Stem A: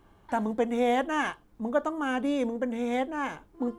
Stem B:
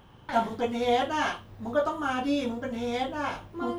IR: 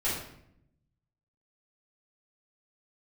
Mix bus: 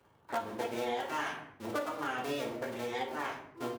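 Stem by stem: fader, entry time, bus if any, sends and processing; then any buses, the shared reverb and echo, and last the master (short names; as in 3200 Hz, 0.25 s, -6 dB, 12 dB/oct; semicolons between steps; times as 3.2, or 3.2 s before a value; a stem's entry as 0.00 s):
-6.5 dB, 0.00 s, send -4 dB, cycle switcher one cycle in 2, muted; reverb removal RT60 0.76 s
-2.0 dB, 9.7 ms, no send, low-pass opened by the level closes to 1000 Hz, open at -24 dBFS; upward expander 1.5:1, over -34 dBFS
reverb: on, RT60 0.70 s, pre-delay 4 ms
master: HPF 72 Hz; low shelf 360 Hz -9 dB; compressor 6:1, threshold -31 dBFS, peak gain reduction 9.5 dB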